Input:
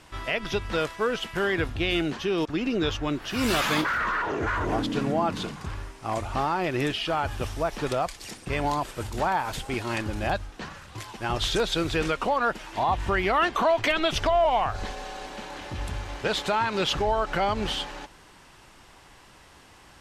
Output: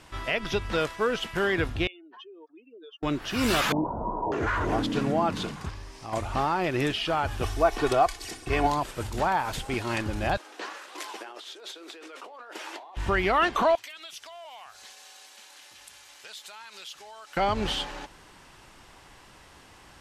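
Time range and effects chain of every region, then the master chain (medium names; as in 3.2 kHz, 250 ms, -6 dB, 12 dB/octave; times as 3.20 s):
1.87–3.03 s: spectral contrast enhancement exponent 2.8 + high-pass 620 Hz 24 dB/octave + compression 2.5:1, threshold -47 dBFS
3.72–4.32 s: rippled Chebyshev low-pass 980 Hz, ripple 3 dB + level flattener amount 50%
5.69–6.13 s: peaking EQ 5.1 kHz +8 dB 0.75 oct + compression 2:1, threshold -40 dBFS + band-stop 1.4 kHz, Q 8.9
7.42–8.67 s: dynamic bell 850 Hz, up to +4 dB, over -36 dBFS, Q 0.77 + comb 2.7 ms, depth 66%
10.37–12.97 s: compressor with a negative ratio -36 dBFS + flange 1.8 Hz, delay 4.9 ms, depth 6 ms, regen -73% + steep high-pass 310 Hz
13.75–17.37 s: differentiator + compression 2.5:1, threshold -42 dBFS
whole clip: none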